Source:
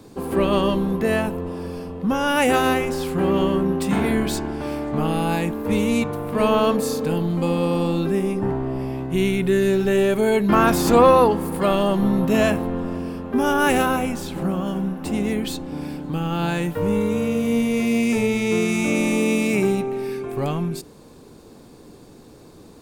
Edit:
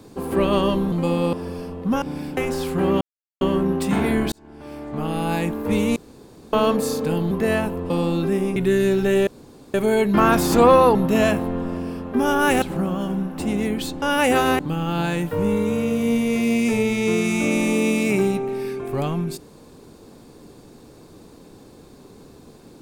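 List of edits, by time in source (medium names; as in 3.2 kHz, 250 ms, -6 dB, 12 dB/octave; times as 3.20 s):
0.92–1.51 s: swap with 7.31–7.72 s
2.20–2.77 s: swap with 15.68–16.03 s
3.41 s: insert silence 0.40 s
4.32–5.45 s: fade in
5.96–6.53 s: room tone
8.38–9.38 s: delete
10.09 s: insert room tone 0.47 s
11.30–12.14 s: delete
13.81–14.28 s: delete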